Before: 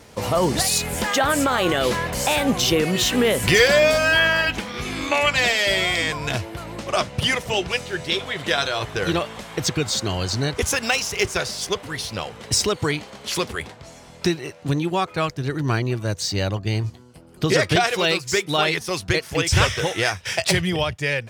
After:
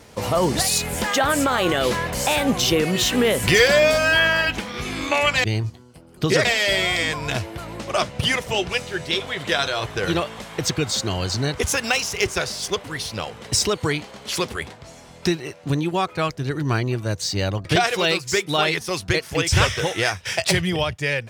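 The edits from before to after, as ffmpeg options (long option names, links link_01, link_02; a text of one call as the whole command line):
ffmpeg -i in.wav -filter_complex "[0:a]asplit=4[link_01][link_02][link_03][link_04];[link_01]atrim=end=5.442[link_05];[link_02]atrim=start=16.638:end=17.652[link_06];[link_03]atrim=start=5.438:end=16.642[link_07];[link_04]atrim=start=17.648[link_08];[link_05][link_06]acrossfade=duration=0.004:curve1=hsin:curve2=hsin[link_09];[link_09][link_07]acrossfade=duration=0.004:curve1=hsin:curve2=hsin[link_10];[link_10][link_08]acrossfade=duration=0.004:curve1=hsin:curve2=hsin" out.wav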